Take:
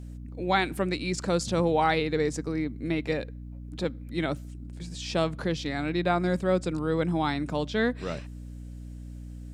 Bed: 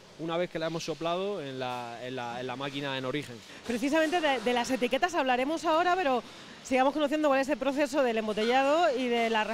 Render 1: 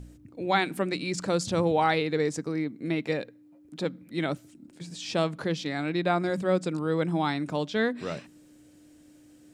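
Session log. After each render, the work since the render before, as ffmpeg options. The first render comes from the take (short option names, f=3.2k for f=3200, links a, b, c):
-af "bandreject=f=60:t=h:w=4,bandreject=f=120:t=h:w=4,bandreject=f=180:t=h:w=4,bandreject=f=240:t=h:w=4"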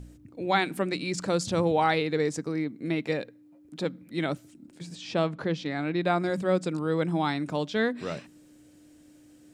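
-filter_complex "[0:a]asettb=1/sr,asplit=3[a][b][c];[a]atrim=end=4.954[d];[b]atrim=start=4.95:end=6.01,asetpts=PTS-STARTPTS,afade=t=in:d=0.004:c=qsin,afade=t=out:st=1.056:d=0.004:c=qsin,aemphasis=mode=reproduction:type=50fm[e];[c]atrim=start=6.006[f];[d][e]acrossfade=d=0.004:c1=hsin:c2=qsin[g];[g][f]acrossfade=d=0.004:c1=qsin:c2=hsin"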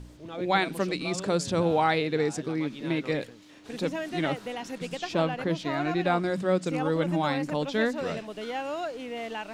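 -filter_complex "[1:a]volume=-8dB[a];[0:a][a]amix=inputs=2:normalize=0"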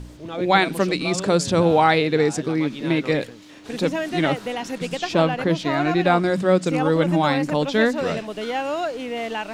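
-af "volume=7.5dB"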